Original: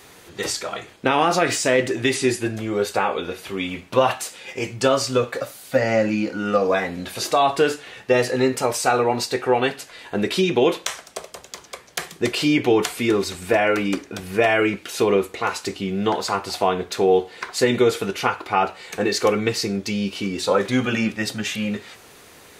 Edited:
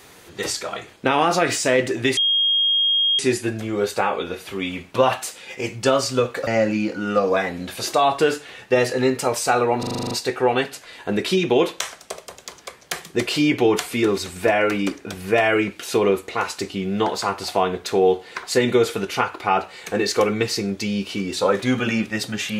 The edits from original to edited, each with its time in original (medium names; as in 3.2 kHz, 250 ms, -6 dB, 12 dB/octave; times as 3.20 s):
2.17 s: add tone 3.25 kHz -15.5 dBFS 1.02 s
5.45–5.85 s: delete
9.17 s: stutter 0.04 s, 9 plays